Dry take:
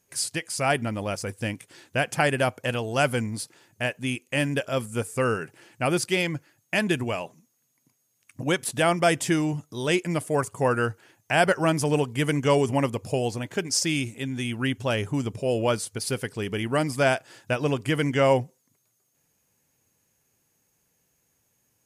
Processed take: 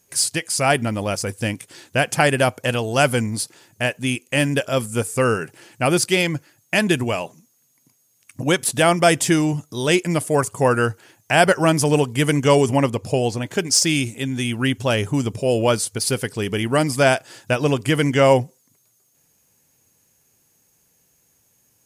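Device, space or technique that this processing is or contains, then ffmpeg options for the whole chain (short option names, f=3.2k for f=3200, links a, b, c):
exciter from parts: -filter_complex "[0:a]asettb=1/sr,asplit=3[a][b][c];[a]atrim=end=12.764[d];[b]atrim=start=12.76:end=13.46,asetpts=PTS-STARTPTS,afade=t=in:d=0.004:c=qsin,afade=t=out:st=0.696:d=0.004:c=qsin,highshelf=f=7.5k:g=-8[e];[c]atrim=start=13.456[f];[d][e]acrossfade=d=0.004:c1=hsin:c2=qsin[g];[g][f]acrossfade=d=0.004:c1=qsin:c2=hsin,asplit=2[h][i];[i]highpass=2.9k,asoftclip=type=tanh:threshold=-22dB,volume=-6dB[j];[h][j]amix=inputs=2:normalize=0,volume=6dB"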